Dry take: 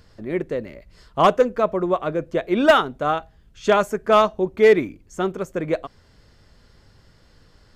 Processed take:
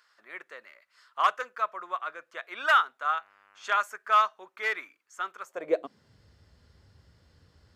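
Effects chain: 2.99–3.78 s: mains buzz 100 Hz, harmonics 30, -39 dBFS -8 dB/octave; high-pass sweep 1.3 kHz -> 73 Hz, 5.41–6.23 s; trim -8.5 dB

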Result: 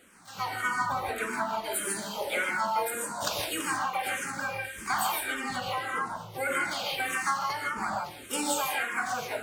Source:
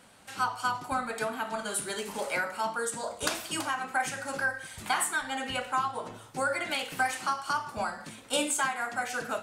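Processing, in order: gated-style reverb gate 180 ms rising, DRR 0 dB; harmony voices +7 st -6 dB; barber-pole phaser -1.7 Hz

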